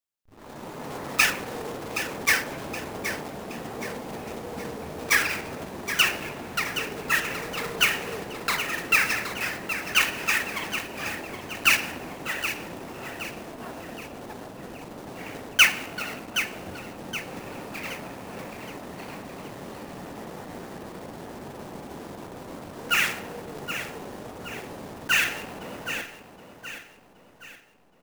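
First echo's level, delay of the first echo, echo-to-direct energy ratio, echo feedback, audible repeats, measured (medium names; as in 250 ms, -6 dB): -10.0 dB, 771 ms, -9.0 dB, 44%, 4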